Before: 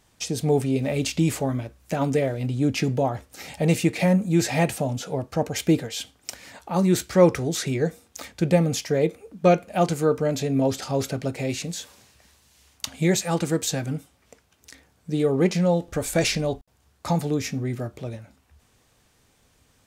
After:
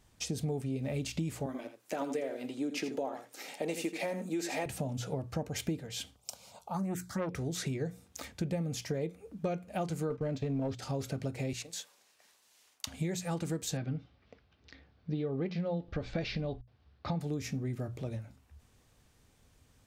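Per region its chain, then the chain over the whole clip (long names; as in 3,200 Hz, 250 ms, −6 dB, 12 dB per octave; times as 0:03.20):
0:01.46–0:04.66: high-pass filter 280 Hz 24 dB per octave + single-tap delay 82 ms −10 dB
0:06.16–0:07.34: high-pass filter 140 Hz + phaser swept by the level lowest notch 290 Hz, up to 1,500 Hz, full sweep at −10.5 dBFS + saturating transformer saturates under 900 Hz
0:10.10–0:10.79: low-pass filter 4,000 Hz + leveller curve on the samples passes 1 + noise gate −28 dBFS, range −12 dB
0:11.53–0:12.87: high-pass filter 490 Hz + transient designer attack −1 dB, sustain −6 dB
0:13.77–0:17.21: Butterworth low-pass 4,700 Hz + notch filter 940 Hz, Q 14
whole clip: low-shelf EQ 190 Hz +8.5 dB; mains-hum notches 60/120/180 Hz; downward compressor 6 to 1, threshold −25 dBFS; level −6.5 dB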